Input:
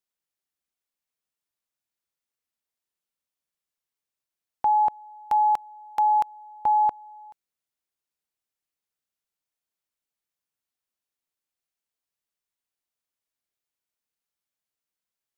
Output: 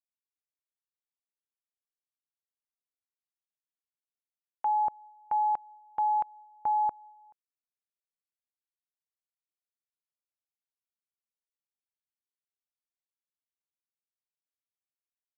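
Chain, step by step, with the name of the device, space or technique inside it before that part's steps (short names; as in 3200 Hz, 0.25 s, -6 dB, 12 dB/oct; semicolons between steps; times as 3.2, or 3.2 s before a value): hearing-loss simulation (LPF 1500 Hz 12 dB/oct; expander -41 dBFS); gain -6 dB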